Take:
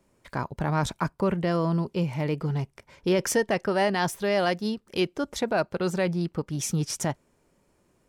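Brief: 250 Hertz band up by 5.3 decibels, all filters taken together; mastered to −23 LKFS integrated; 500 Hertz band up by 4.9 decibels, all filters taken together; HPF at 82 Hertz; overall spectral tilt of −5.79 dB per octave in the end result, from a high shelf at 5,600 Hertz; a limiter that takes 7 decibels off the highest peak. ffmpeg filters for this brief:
ffmpeg -i in.wav -af "highpass=82,equalizer=frequency=250:width_type=o:gain=7.5,equalizer=frequency=500:width_type=o:gain=4,highshelf=frequency=5600:gain=-5.5,volume=2dB,alimiter=limit=-11.5dB:level=0:latency=1" out.wav

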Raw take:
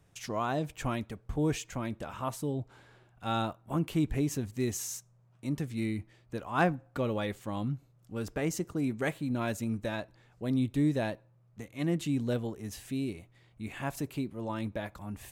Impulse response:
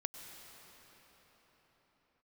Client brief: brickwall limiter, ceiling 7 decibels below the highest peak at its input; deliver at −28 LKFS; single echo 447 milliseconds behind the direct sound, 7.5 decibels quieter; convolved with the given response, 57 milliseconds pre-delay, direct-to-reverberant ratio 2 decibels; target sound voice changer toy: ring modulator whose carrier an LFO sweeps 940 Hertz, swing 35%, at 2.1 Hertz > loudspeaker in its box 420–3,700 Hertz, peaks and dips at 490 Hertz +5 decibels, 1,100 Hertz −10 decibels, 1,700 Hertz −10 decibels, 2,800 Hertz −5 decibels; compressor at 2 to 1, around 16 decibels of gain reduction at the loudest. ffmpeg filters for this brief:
-filter_complex "[0:a]acompressor=threshold=-53dB:ratio=2,alimiter=level_in=14.5dB:limit=-24dB:level=0:latency=1,volume=-14.5dB,aecho=1:1:447:0.422,asplit=2[link_01][link_02];[1:a]atrim=start_sample=2205,adelay=57[link_03];[link_02][link_03]afir=irnorm=-1:irlink=0,volume=-1dB[link_04];[link_01][link_04]amix=inputs=2:normalize=0,aeval=exprs='val(0)*sin(2*PI*940*n/s+940*0.35/2.1*sin(2*PI*2.1*n/s))':channel_layout=same,highpass=420,equalizer=frequency=490:width_type=q:width=4:gain=5,equalizer=frequency=1100:width_type=q:width=4:gain=-10,equalizer=frequency=1700:width_type=q:width=4:gain=-10,equalizer=frequency=2800:width_type=q:width=4:gain=-5,lowpass=frequency=3700:width=0.5412,lowpass=frequency=3700:width=1.3066,volume=24.5dB"

